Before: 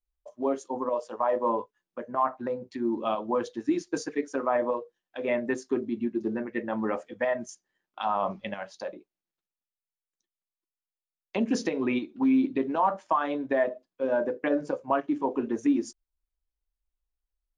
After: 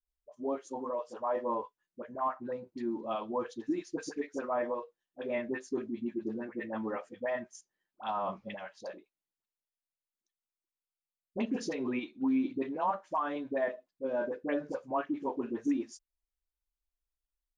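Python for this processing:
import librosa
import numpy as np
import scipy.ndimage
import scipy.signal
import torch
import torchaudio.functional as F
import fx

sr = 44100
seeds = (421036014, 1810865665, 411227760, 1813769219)

y = fx.dispersion(x, sr, late='highs', ms=61.0, hz=840.0)
y = y * librosa.db_to_amplitude(-6.5)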